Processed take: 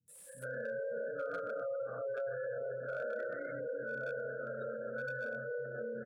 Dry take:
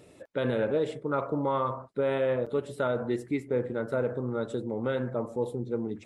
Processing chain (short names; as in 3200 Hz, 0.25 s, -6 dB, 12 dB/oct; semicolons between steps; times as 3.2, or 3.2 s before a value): short-time reversal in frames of 62 ms; in parallel at -8 dB: bit-crush 6-bit; on the sum: treble ducked by the level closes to 1300 Hz, closed at -25 dBFS; EQ curve 210 Hz 0 dB, 350 Hz -19 dB, 530 Hz 0 dB, 1000 Hz -28 dB, 1500 Hz -1 dB, 2200 Hz -16 dB, 6100 Hz -12 dB, 9200 Hz 0 dB; bands offset in time lows, highs 80 ms, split 230 Hz; Schroeder reverb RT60 3.5 s, combs from 31 ms, DRR -4 dB; limiter -27 dBFS, peak gain reduction 12 dB; differentiator; spectral gate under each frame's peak -20 dB strong; slew limiter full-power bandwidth 2.6 Hz; gain +18 dB